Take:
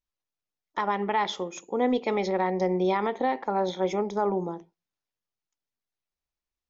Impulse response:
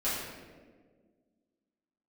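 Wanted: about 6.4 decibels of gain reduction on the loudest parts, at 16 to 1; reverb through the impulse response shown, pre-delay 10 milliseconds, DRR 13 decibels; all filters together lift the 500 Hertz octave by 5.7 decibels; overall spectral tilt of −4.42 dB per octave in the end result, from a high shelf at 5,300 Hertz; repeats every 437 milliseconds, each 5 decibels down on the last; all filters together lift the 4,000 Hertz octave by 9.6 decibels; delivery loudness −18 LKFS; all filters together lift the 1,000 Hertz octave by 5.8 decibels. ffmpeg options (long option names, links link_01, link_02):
-filter_complex "[0:a]equalizer=frequency=500:width_type=o:gain=6,equalizer=frequency=1000:width_type=o:gain=4.5,equalizer=frequency=4000:width_type=o:gain=9,highshelf=frequency=5300:gain=6,acompressor=threshold=-21dB:ratio=16,aecho=1:1:437|874|1311|1748|2185|2622|3059:0.562|0.315|0.176|0.0988|0.0553|0.031|0.0173,asplit=2[link_01][link_02];[1:a]atrim=start_sample=2205,adelay=10[link_03];[link_02][link_03]afir=irnorm=-1:irlink=0,volume=-21dB[link_04];[link_01][link_04]amix=inputs=2:normalize=0,volume=8dB"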